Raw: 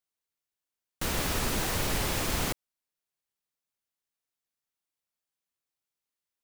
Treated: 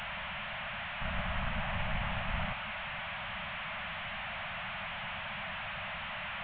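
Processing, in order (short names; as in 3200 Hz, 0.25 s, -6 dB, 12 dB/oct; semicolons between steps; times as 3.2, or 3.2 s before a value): delta modulation 16 kbps, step -28.5 dBFS; elliptic band-stop 210–600 Hz, stop band 40 dB; gain -3 dB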